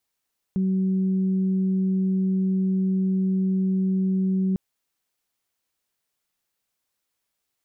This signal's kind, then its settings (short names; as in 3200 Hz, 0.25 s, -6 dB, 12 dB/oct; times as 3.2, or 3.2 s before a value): steady additive tone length 4.00 s, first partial 189 Hz, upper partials -16 dB, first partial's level -19.5 dB